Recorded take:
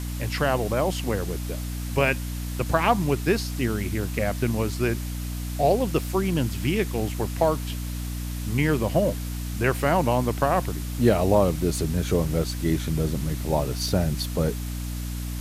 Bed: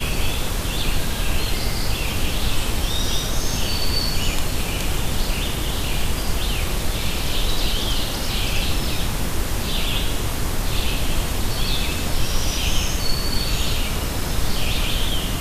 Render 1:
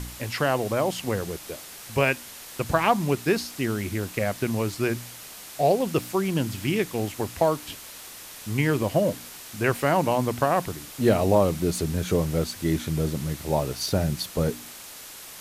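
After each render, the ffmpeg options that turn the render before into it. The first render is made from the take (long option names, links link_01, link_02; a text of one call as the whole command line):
ffmpeg -i in.wav -af "bandreject=frequency=60:width_type=h:width=4,bandreject=frequency=120:width_type=h:width=4,bandreject=frequency=180:width_type=h:width=4,bandreject=frequency=240:width_type=h:width=4,bandreject=frequency=300:width_type=h:width=4" out.wav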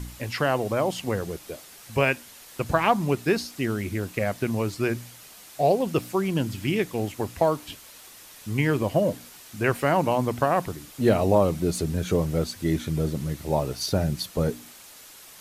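ffmpeg -i in.wav -af "afftdn=noise_reduction=6:noise_floor=-42" out.wav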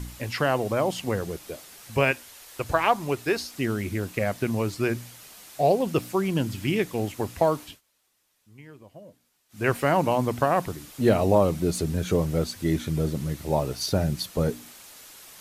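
ffmpeg -i in.wav -filter_complex "[0:a]asettb=1/sr,asplit=3[link_01][link_02][link_03];[link_01]atrim=end=2.114[link_04];[link_02]atrim=start=2.11:end=3.54,asetpts=PTS-STARTPTS,afade=type=in:duration=0.004:curve=qsin,afade=type=out:start_time=1.426:duration=0.004:curve=qsin,equalizer=frequency=190:width=1.5:gain=-11[link_05];[link_03]atrim=start=3.536[link_06];[link_04][link_05]acrossfade=duration=0.004:curve1=hsin:curve2=qsin[link_07];[link_07][link_06]acrossfade=duration=0.004:curve1=qsin:curve2=hsin,asplit=3[link_08][link_09][link_10];[link_08]atrim=end=7.81,asetpts=PTS-STARTPTS,afade=type=out:start_time=7.62:duration=0.19:silence=0.0630957[link_11];[link_09]atrim=start=7.81:end=9.49,asetpts=PTS-STARTPTS,volume=-24dB[link_12];[link_10]atrim=start=9.49,asetpts=PTS-STARTPTS,afade=type=in:duration=0.19:silence=0.0630957[link_13];[link_11][link_12][link_13]concat=n=3:v=0:a=1" out.wav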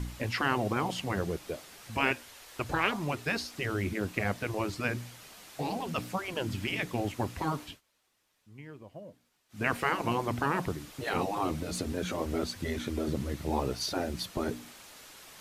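ffmpeg -i in.wav -af "afftfilt=real='re*lt(hypot(re,im),0.282)':imag='im*lt(hypot(re,im),0.282)':win_size=1024:overlap=0.75,highshelf=frequency=6500:gain=-9.5" out.wav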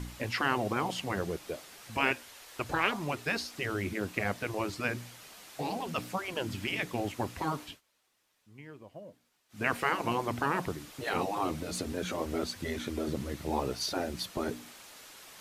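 ffmpeg -i in.wav -af "lowshelf=frequency=180:gain=-5.5" out.wav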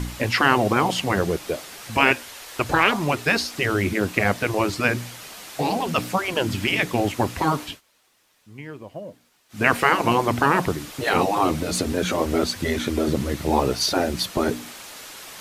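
ffmpeg -i in.wav -af "volume=11.5dB,alimiter=limit=-3dB:level=0:latency=1" out.wav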